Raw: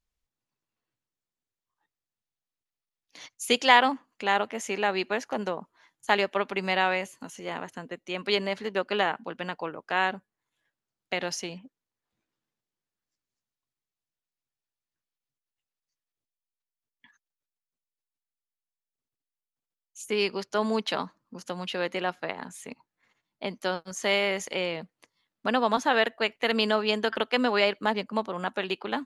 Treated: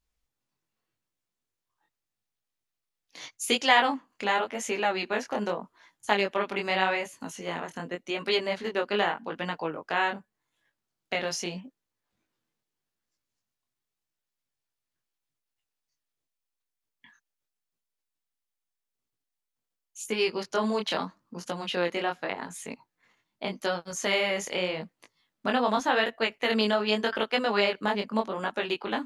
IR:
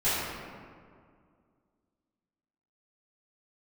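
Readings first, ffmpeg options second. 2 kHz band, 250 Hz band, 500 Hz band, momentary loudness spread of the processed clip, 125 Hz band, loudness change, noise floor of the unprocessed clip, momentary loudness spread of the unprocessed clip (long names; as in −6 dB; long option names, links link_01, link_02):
−1.0 dB, 0.0 dB, −0.5 dB, 12 LU, 0.0 dB, −1.0 dB, below −85 dBFS, 14 LU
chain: -filter_complex "[0:a]asplit=2[link_01][link_02];[link_02]acompressor=threshold=-32dB:ratio=6,volume=0dB[link_03];[link_01][link_03]amix=inputs=2:normalize=0,flanger=delay=17.5:depth=7.1:speed=0.84"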